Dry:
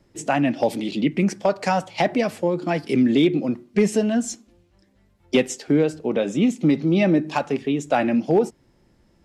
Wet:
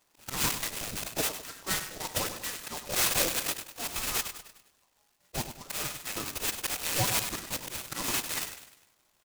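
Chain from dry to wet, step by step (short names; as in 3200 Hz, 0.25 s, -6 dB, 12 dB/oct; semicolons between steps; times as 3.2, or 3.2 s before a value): elliptic band-stop 300–840 Hz; tilt +3 dB/oct; auto swell 0.12 s; on a send: feedback echo 0.1 s, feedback 46%, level -10 dB; on the sum: inverted band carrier 2800 Hz; noise-modulated delay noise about 4900 Hz, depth 0.12 ms; gain -3 dB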